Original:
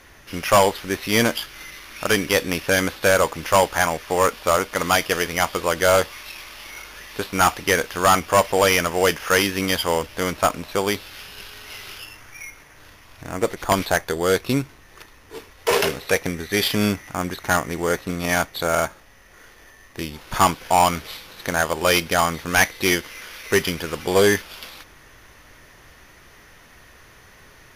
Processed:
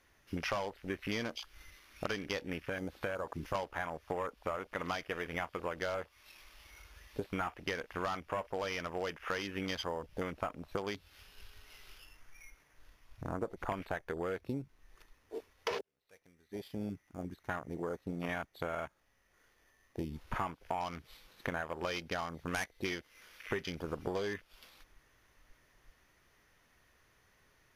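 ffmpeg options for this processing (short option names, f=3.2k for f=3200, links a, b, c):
-filter_complex "[0:a]asettb=1/sr,asplit=3[a][b][c];[a]atrim=end=2.604[d];[b]atrim=start=2.6:end=3.55,asetpts=PTS-STARTPTS,afade=t=in:d=0.004:c=qsin,afade=t=out:st=0.946:d=0.004:c=qsin,acompressor=threshold=-30dB:ratio=2:attack=3.2:release=140:knee=1:detection=peak[e];[c]atrim=start=3.546[f];[d][e]acrossfade=d=0.004:c1=hsin:c2=qsin[g];[g][f]acrossfade=d=0.004:c1=qsin:c2=hsin,asplit=2[h][i];[h]atrim=end=15.81,asetpts=PTS-STARTPTS,afade=t=out:st=15.806:d=0.004:c=hsin[j];[i]atrim=start=15.81,asetpts=PTS-STARTPTS,afade=t=in:d=4.48[k];[j][k]concat=n=2:v=0:a=1,afwtdn=0.0316,acompressor=threshold=-30dB:ratio=12,volume=-3.5dB"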